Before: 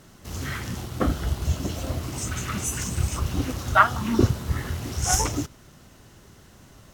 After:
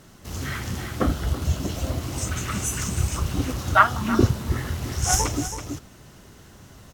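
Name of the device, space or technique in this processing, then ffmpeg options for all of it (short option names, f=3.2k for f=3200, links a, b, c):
ducked delay: -filter_complex "[0:a]asplit=3[a][b][c];[b]adelay=328,volume=-3dB[d];[c]apad=whole_len=320323[e];[d][e]sidechaincompress=threshold=-32dB:ratio=6:attack=46:release=599[f];[a][f]amix=inputs=2:normalize=0,volume=1dB"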